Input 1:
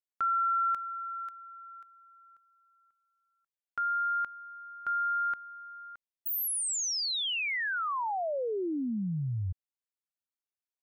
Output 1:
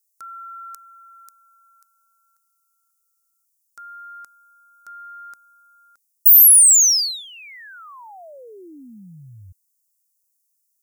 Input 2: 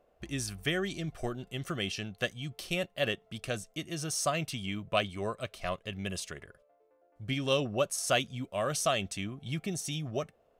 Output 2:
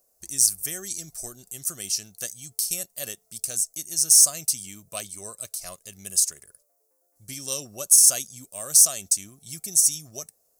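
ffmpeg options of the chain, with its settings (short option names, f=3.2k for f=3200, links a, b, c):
-af "bass=f=250:g=-1,treble=f=4k:g=9,aexciter=amount=7.2:drive=9.2:freq=4.8k,volume=-9dB"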